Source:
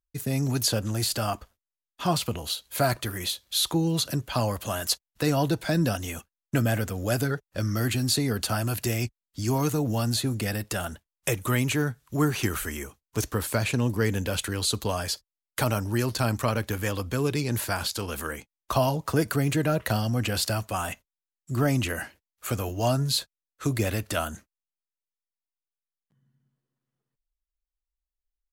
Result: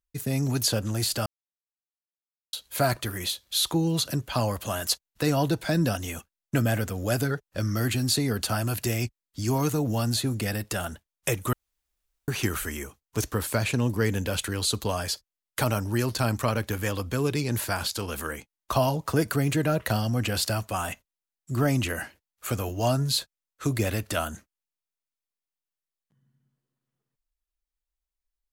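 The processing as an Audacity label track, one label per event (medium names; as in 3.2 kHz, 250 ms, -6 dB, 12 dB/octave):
1.260000	2.530000	mute
11.530000	12.280000	room tone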